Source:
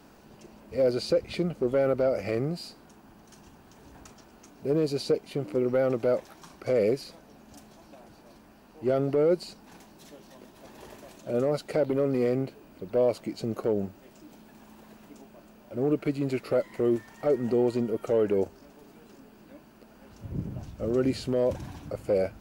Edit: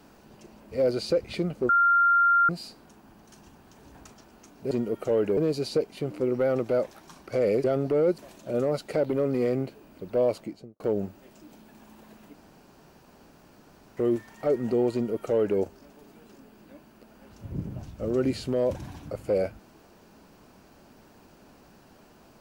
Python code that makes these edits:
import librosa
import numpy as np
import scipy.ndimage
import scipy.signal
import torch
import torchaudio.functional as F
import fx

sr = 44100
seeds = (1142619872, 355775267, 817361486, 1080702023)

y = fx.studio_fade_out(x, sr, start_s=13.12, length_s=0.48)
y = fx.edit(y, sr, fx.bleep(start_s=1.69, length_s=0.8, hz=1390.0, db=-17.0),
    fx.cut(start_s=6.98, length_s=1.89),
    fx.cut(start_s=9.41, length_s=1.57),
    fx.room_tone_fill(start_s=15.14, length_s=1.63),
    fx.duplicate(start_s=17.73, length_s=0.66, to_s=4.71), tone=tone)